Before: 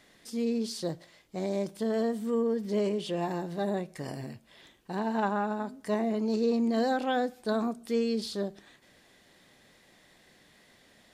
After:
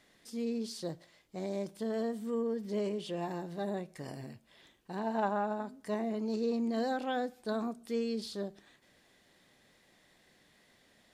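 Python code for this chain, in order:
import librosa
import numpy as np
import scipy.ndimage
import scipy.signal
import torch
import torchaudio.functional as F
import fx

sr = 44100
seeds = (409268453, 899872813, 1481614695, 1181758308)

y = fx.peak_eq(x, sr, hz=640.0, db=6.0, octaves=0.79, at=(5.03, 5.61))
y = y * librosa.db_to_amplitude(-5.5)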